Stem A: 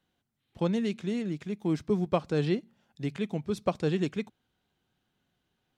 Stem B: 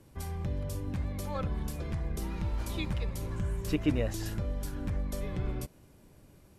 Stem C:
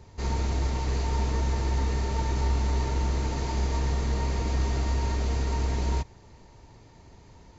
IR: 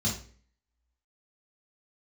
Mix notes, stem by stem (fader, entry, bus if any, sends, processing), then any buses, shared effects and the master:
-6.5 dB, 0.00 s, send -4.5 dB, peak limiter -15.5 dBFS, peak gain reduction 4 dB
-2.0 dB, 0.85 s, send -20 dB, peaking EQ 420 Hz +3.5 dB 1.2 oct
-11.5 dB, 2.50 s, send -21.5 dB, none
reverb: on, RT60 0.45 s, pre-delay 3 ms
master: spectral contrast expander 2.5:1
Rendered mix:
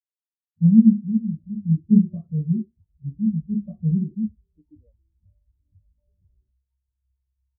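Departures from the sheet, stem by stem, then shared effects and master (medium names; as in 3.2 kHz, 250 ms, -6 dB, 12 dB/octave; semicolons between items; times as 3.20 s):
stem A -6.5 dB -> +1.0 dB; stem C: send off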